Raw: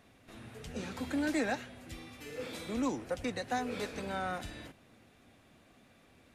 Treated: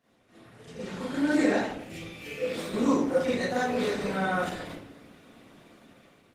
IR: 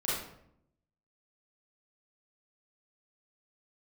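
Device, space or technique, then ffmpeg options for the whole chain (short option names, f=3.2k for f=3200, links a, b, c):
far-field microphone of a smart speaker: -filter_complex "[0:a]asettb=1/sr,asplit=3[a][b][c];[a]atrim=end=1.724[d];[b]atrim=start=1.72:end=2.48,asetpts=PTS-STARTPTS,afade=t=in:d=0.004:c=qsin,afade=t=out:st=0.756:d=0.004:c=qsin,equalizer=f=100:t=o:w=0.33:g=4,equalizer=f=200:t=o:w=0.33:g=5,equalizer=f=1k:t=o:w=0.33:g=-11,equalizer=f=1.6k:t=o:w=0.33:g=-4,equalizer=f=2.5k:t=o:w=0.33:g=9[e];[c]atrim=start=2.476[f];[d][e]acrossfade=d=0.004:c1=hsin:c2=qsin[g];[g][f]acrossfade=d=0.004:c1=qsin:c2=hsin[h];[1:a]atrim=start_sample=2205[i];[h][i]afir=irnorm=-1:irlink=0,highpass=130,dynaudnorm=f=350:g=5:m=12dB,volume=-8.5dB" -ar 48000 -c:a libopus -b:a 16k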